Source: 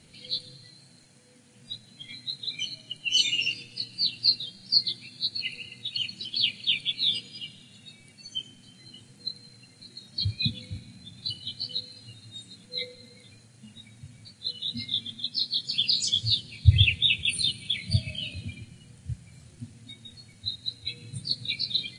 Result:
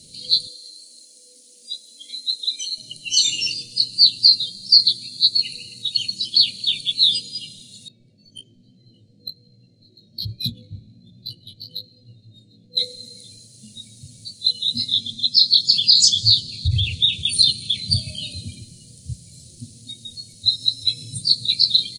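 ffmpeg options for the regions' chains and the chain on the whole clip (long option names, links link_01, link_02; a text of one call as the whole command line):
ffmpeg -i in.wav -filter_complex "[0:a]asettb=1/sr,asplit=3[link_01][link_02][link_03];[link_01]atrim=end=0.474[link_04];[link_02]atrim=start=0.47:end=2.78,asetpts=PTS-STARTPTS,afade=type=in:duration=0.004:curve=qsin,afade=type=out:start_time=2.306:duration=0.004:curve=qsin,highpass=frequency=340:width=0.5412,highpass=frequency=340:width=1.3066,equalizer=frequency=1400:width=0.31:gain=-4,aecho=1:1:3.8:0.42,atrim=end_sample=101871[link_05];[link_03]atrim=start=2.776[link_06];[link_04][link_05]acrossfade=duration=0.004:curve1=hsin:curve2=qsin[link_07];[link_07][link_06]acrossfade=duration=0.004:curve1=qsin:curve2=hsin,asettb=1/sr,asplit=3[link_08][link_09][link_10];[link_08]atrim=end=7.884[link_11];[link_09]atrim=start=7.88:end=12.77,asetpts=PTS-STARTPTS,afade=type=in:duration=0.004:curve=qsin,afade=type=out:start_time=4.886:duration=0.004:curve=qsin,adynamicsmooth=sensitivity=1.5:basefreq=1400,flanger=delay=16:depth=3.1:speed=1.2[link_12];[link_10]atrim=start=12.766[link_13];[link_11][link_12]acrossfade=duration=0.004:curve1=hsin:curve2=qsin[link_14];[link_14][link_13]acrossfade=duration=0.004:curve1=qsin:curve2=hsin,asettb=1/sr,asplit=3[link_15][link_16][link_17];[link_15]atrim=end=14.934[link_18];[link_16]atrim=start=14.93:end=17.93,asetpts=PTS-STARTPTS,afade=type=in:duration=0.004:curve=qsin,afade=type=out:start_time=2.996:duration=0.004:curve=qsin,lowpass=5800,bass=frequency=250:gain=4,treble=frequency=4000:gain=5,bandreject=frequency=60:width_type=h:width=6,bandreject=frequency=120:width_type=h:width=6,bandreject=frequency=180:width_type=h:width=6[link_19];[link_17]atrim=start=17.926[link_20];[link_18][link_19]acrossfade=duration=0.004:curve1=hsin:curve2=qsin[link_21];[link_21][link_20]acrossfade=duration=0.004:curve1=qsin:curve2=hsin,asettb=1/sr,asplit=3[link_22][link_23][link_24];[link_22]atrim=end=20.464[link_25];[link_23]atrim=start=20.46:end=21.14,asetpts=PTS-STARTPTS,afade=type=in:duration=0.004:curve=qsin,afade=type=out:start_time=0.676:duration=0.004:curve=qsin,aeval=exprs='val(0)+0.000708*sin(2*PI*5300*n/s)':channel_layout=same,aecho=1:1:7.4:0.56,atrim=end_sample=29988,acompressor=mode=upward:threshold=-39dB:ratio=2.5:attack=3.2:release=140:knee=2.83:detection=peak[link_26];[link_24]atrim=start=21.136[link_27];[link_25][link_26]acrossfade=duration=0.004:curve1=hsin:curve2=qsin[link_28];[link_28][link_27]acrossfade=duration=0.004:curve1=qsin:curve2=hsin,alimiter=limit=-16dB:level=0:latency=1:release=49,firequalizer=gain_entry='entry(600,0);entry(930,-27);entry(4100,11)':delay=0.05:min_phase=1,volume=3.5dB" out.wav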